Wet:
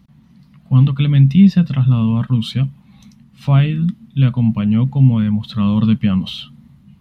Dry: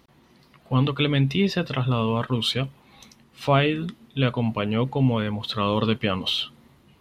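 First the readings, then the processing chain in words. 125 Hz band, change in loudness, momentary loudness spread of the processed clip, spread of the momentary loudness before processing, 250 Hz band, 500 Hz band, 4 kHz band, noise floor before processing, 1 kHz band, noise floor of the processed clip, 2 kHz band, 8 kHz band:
+12.0 dB, +9.0 dB, 9 LU, 7 LU, +10.5 dB, -8.0 dB, -3.5 dB, -58 dBFS, -4.5 dB, -49 dBFS, -3.5 dB, no reading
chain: resonant low shelf 270 Hz +11.5 dB, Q 3; trim -3.5 dB

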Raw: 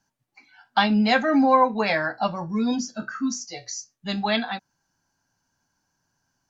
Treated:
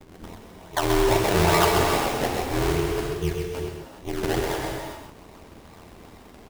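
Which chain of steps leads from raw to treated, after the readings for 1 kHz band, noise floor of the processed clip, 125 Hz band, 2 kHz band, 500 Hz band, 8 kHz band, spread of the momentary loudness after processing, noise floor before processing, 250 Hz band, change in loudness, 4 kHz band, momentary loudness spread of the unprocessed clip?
-2.5 dB, -48 dBFS, +8.5 dB, -2.0 dB, +3.0 dB, no reading, 19 LU, -76 dBFS, -5.0 dB, -1.0 dB, 0.0 dB, 15 LU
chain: one-bit delta coder 64 kbps, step -30 dBFS; peaking EQ 240 Hz +2 dB 0.31 oct; ring modulator 41 Hz; vibrato 0.57 Hz 27 cents; brick-wall FIR low-pass 1.1 kHz; in parallel at -1.5 dB: peak limiter -24 dBFS, peak gain reduction 15 dB; on the sum: feedback comb 390 Hz, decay 0.66 s, mix 60%; decimation with a swept rate 28×, swing 100% 2.4 Hz; ring modulator 140 Hz; on a send: delay 131 ms -5 dB; on the sum: gate -44 dBFS, range -8 dB; gated-style reverb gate 430 ms flat, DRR 1.5 dB; trim +7.5 dB

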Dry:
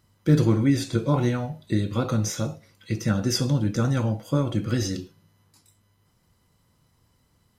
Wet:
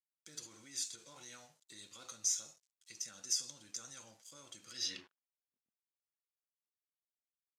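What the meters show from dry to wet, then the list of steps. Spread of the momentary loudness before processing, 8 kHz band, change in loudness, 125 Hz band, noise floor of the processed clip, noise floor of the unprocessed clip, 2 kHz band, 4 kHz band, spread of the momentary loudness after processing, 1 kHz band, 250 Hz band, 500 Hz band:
10 LU, -2.0 dB, -15.5 dB, under -40 dB, under -85 dBFS, -66 dBFS, -19.0 dB, -8.0 dB, 20 LU, -26.5 dB, -39.0 dB, -33.5 dB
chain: peak limiter -18.5 dBFS, peak gain reduction 10.5 dB; crossover distortion -48.5 dBFS; band-pass sweep 7 kHz -> 230 Hz, 4.71–5.56 s; trim +2.5 dB

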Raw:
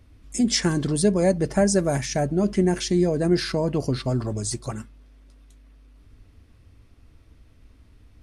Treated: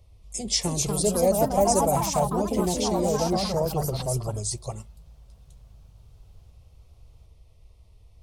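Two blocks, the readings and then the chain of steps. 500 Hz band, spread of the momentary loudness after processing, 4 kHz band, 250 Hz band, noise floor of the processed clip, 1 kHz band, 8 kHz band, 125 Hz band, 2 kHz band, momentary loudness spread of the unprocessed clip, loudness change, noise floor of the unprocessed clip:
-1.0 dB, 11 LU, -0.5 dB, -6.0 dB, -55 dBFS, +6.5 dB, +2.0 dB, -4.0 dB, -10.0 dB, 8 LU, -1.5 dB, -54 dBFS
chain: static phaser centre 650 Hz, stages 4; ever faster or slower copies 343 ms, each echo +3 st, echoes 3

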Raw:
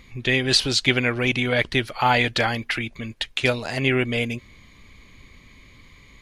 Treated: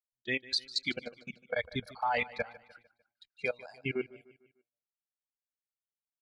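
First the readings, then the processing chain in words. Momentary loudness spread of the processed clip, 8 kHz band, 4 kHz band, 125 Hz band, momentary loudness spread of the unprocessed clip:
11 LU, under -15 dB, -14.5 dB, -21.0 dB, 10 LU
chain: resonances exaggerated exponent 1.5; level held to a coarse grid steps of 20 dB; spectral noise reduction 20 dB; time-frequency box 0.95–1.51 s, 820–6100 Hz -9 dB; gate -49 dBFS, range -33 dB; feedback delay 150 ms, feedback 45%, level -19 dB; trim -8.5 dB

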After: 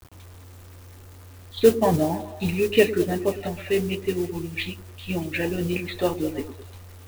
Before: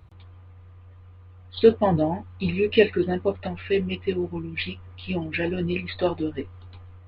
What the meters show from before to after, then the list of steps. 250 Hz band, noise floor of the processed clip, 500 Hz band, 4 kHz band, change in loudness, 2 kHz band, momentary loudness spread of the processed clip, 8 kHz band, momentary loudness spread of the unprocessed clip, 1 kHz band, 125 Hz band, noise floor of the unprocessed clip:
+0.5 dB, -45 dBFS, +0.5 dB, +0.5 dB, +0.5 dB, 0.0 dB, 14 LU, no reading, 13 LU, +0.5 dB, 0.0 dB, -48 dBFS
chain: modulation noise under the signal 19 dB; word length cut 8-bit, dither none; repeats whose band climbs or falls 105 ms, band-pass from 290 Hz, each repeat 0.7 oct, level -9.5 dB

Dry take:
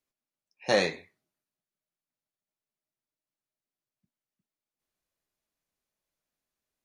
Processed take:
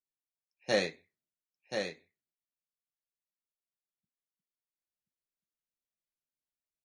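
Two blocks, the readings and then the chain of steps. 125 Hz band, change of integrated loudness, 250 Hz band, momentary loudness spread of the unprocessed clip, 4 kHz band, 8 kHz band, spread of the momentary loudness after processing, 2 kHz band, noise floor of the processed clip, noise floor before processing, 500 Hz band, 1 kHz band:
-4.0 dB, -7.0 dB, -3.5 dB, 10 LU, -3.5 dB, -3.5 dB, 10 LU, -4.0 dB, under -85 dBFS, under -85 dBFS, -4.0 dB, -7.5 dB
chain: peaking EQ 970 Hz -7.5 dB 0.77 oct; delay 1031 ms -4 dB; upward expansion 1.5:1, over -46 dBFS; trim -2.5 dB

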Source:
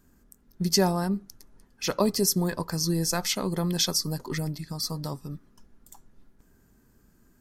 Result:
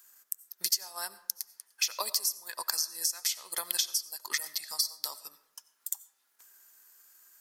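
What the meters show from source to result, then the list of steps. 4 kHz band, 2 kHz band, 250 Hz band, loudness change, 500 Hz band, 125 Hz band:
-2.0 dB, -2.0 dB, under -35 dB, -4.5 dB, -20.5 dB, under -40 dB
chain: high-pass 810 Hz 12 dB/octave; tilt EQ +4 dB/octave; compression 12:1, threshold -30 dBFS, peak gain reduction 22 dB; transient shaper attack +5 dB, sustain -6 dB; algorithmic reverb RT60 0.83 s, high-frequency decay 0.55×, pre-delay 50 ms, DRR 16 dB

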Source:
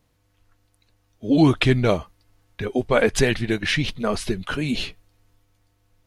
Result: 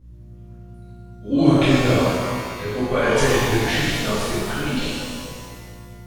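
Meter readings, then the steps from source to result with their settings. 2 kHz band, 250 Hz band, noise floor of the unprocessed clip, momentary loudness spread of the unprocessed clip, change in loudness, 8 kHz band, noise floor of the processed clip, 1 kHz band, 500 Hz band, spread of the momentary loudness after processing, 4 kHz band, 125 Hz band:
+2.0 dB, +2.0 dB, -66 dBFS, 10 LU, +1.5 dB, +4.0 dB, -42 dBFS, +5.0 dB, +2.0 dB, 19 LU, +2.5 dB, +1.5 dB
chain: hum 60 Hz, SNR 20 dB; pitch-shifted reverb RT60 1.9 s, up +12 st, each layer -8 dB, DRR -11.5 dB; trim -10.5 dB

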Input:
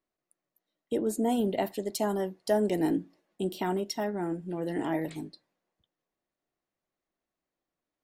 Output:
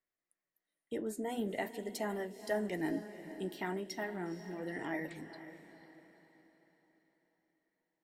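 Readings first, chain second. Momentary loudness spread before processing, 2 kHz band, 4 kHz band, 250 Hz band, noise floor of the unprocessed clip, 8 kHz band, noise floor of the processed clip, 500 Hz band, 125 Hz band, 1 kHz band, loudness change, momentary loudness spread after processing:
8 LU, +0.5 dB, -8.0 dB, -9.0 dB, under -85 dBFS, -9.0 dB, under -85 dBFS, -9.0 dB, -9.0 dB, -8.5 dB, -9.0 dB, 14 LU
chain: peaking EQ 1.9 kHz +11 dB 0.62 oct; flange 0.42 Hz, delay 1.4 ms, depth 10 ms, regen -72%; on a send: echo that smears into a reverb 483 ms, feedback 44%, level -12 dB; on the sum: trim -5 dB

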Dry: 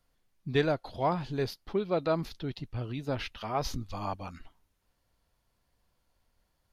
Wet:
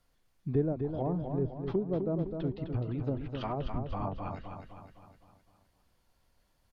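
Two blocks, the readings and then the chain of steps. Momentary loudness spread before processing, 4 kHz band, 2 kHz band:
9 LU, -12.5 dB, -14.0 dB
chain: low-pass that closes with the level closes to 370 Hz, closed at -29 dBFS; feedback delay 256 ms, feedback 50%, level -6 dB; trim +1.5 dB

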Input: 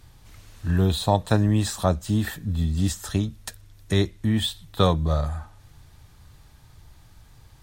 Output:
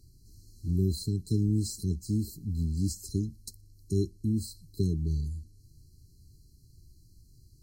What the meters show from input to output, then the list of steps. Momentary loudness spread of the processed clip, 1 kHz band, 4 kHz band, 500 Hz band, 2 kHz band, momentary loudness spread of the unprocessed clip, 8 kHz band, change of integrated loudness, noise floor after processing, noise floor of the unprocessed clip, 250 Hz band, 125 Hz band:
10 LU, under -40 dB, -14.5 dB, -12.0 dB, under -40 dB, 10 LU, -6.0 dB, -7.0 dB, -58 dBFS, -52 dBFS, -6.0 dB, -6.0 dB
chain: brick-wall FIR band-stop 430–4000 Hz; trim -6 dB

